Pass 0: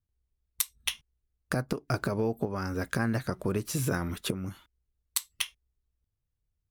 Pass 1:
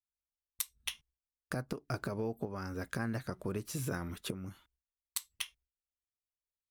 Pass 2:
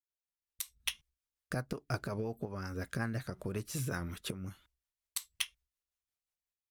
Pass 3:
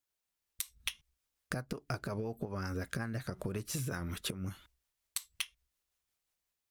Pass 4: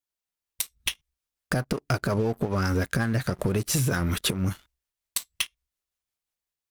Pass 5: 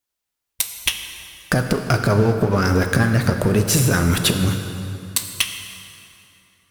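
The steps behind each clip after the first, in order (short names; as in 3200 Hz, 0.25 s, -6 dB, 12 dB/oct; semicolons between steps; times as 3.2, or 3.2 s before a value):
gate with hold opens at -60 dBFS; gain -7.5 dB
bell 300 Hz -4.5 dB 1.8 oct; AGC gain up to 11.5 dB; rotary speaker horn 5.5 Hz; gain -7.5 dB
compressor, threshold -42 dBFS, peak gain reduction 13.5 dB; gain +7.5 dB
sample leveller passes 3; gain +2 dB
plate-style reverb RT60 2.9 s, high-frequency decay 0.75×, DRR 5.5 dB; gain +7.5 dB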